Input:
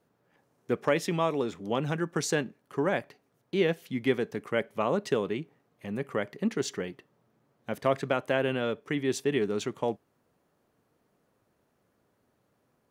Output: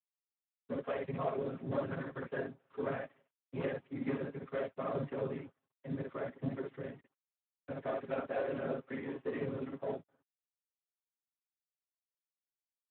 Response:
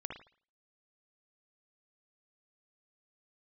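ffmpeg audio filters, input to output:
-filter_complex "[0:a]asettb=1/sr,asplit=3[s0][s1][s2];[s0]atrim=end=1.464[s3];[s1]atrim=start=1.46:end=2.11,asetpts=PTS-STARTPTS,afade=t=in:d=0.004:c=qsin,afade=t=out:st=0.646:d=0.004:c=qsin,aeval=exprs='0.211*(cos(1*acos(clip(val(0)/0.211,-1,1)))-cos(1*PI/2))+0.0188*(cos(5*acos(clip(val(0)/0.211,-1,1)))-cos(5*PI/2))+0.0266*(cos(8*acos(clip(val(0)/0.211,-1,1)))-cos(8*PI/2))':c=same[s4];[s2]atrim=start=2.106[s5];[s3][s4]acrossfade=d=0.004:c1=hsin:c2=qsin[s6];[s6][s5]acrossfade=d=0.004:c1=qsin:c2=hsin,highpass=f=180:w=0.5412,highpass=f=180:w=1.3066,equalizer=f=200:t=q:w=4:g=6,equalizer=f=580:t=q:w=4:g=4,equalizer=f=840:t=q:w=4:g=-7,lowpass=f=2300:w=0.5412,lowpass=f=2300:w=1.3066,asoftclip=type=tanh:threshold=0.075,asplit=2[s7][s8];[s8]adelay=256,lowpass=f=1700:p=1,volume=0.075,asplit=2[s9][s10];[s10]adelay=256,lowpass=f=1700:p=1,volume=0.37,asplit=2[s11][s12];[s12]adelay=256,lowpass=f=1700:p=1,volume=0.37[s13];[s7][s9][s11][s13]amix=inputs=4:normalize=0,aeval=exprs='sgn(val(0))*max(abs(val(0))-0.00376,0)':c=same,equalizer=f=340:w=7.7:g=-11,asettb=1/sr,asplit=3[s14][s15][s16];[s14]atrim=end=6.834[s17];[s15]atrim=start=6.83:end=7.77,asetpts=PTS-STARTPTS,afade=t=in:d=0.004:c=qsin,afade=t=out:st=0.936:d=0.004:c=qsin,bandreject=f=490:w=15[s18];[s16]atrim=start=7.766[s19];[s17][s18]acrossfade=d=0.004:c1=hsin:c2=qsin[s20];[s20][s19]acrossfade=d=0.004:c1=qsin:c2=hsin[s21];[1:a]atrim=start_sample=2205,atrim=end_sample=3087[s22];[s21][s22]afir=irnorm=-1:irlink=0,afftfilt=real='hypot(re,im)*cos(2*PI*random(0))':imag='hypot(re,im)*sin(2*PI*random(1))':win_size=512:overlap=0.75,aecho=1:1:7.4:0.97" -ar 8000 -c:a libspeex -b:a 11k

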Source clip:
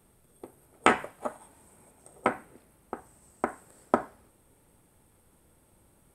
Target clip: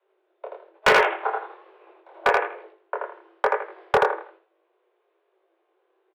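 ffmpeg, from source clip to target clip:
-filter_complex "[0:a]agate=range=0.178:threshold=0.00141:ratio=16:detection=peak,lowshelf=f=120:t=q:w=3:g=-8,asplit=2[s0][s1];[s1]aecho=0:1:81|162|243|324:0.708|0.212|0.0637|0.0191[s2];[s0][s2]amix=inputs=2:normalize=0,highpass=f=160:t=q:w=0.5412,highpass=f=160:t=q:w=1.307,lowpass=f=3300:t=q:w=0.5176,lowpass=f=3300:t=q:w=0.7071,lowpass=f=3300:t=q:w=1.932,afreqshift=-140,acontrast=84,flanger=delay=19:depth=7.9:speed=1.1,afreqshift=330,volume=5.62,asoftclip=hard,volume=0.178,volume=1.58"

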